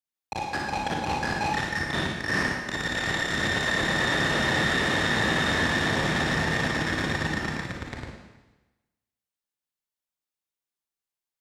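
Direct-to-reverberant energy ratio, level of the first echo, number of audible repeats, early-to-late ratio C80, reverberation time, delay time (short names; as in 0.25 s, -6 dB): -2.0 dB, none, none, 3.5 dB, 1.1 s, none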